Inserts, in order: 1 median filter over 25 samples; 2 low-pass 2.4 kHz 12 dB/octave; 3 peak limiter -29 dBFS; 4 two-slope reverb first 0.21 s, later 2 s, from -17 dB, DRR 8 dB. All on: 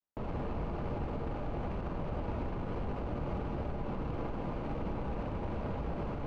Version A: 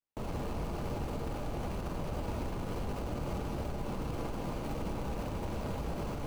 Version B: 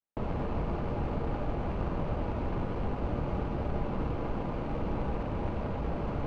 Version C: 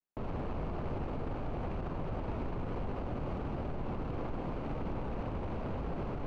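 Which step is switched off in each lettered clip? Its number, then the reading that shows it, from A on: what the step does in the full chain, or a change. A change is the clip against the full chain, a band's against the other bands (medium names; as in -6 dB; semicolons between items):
2, 4 kHz band +7.5 dB; 3, mean gain reduction 4.0 dB; 4, crest factor change -3.5 dB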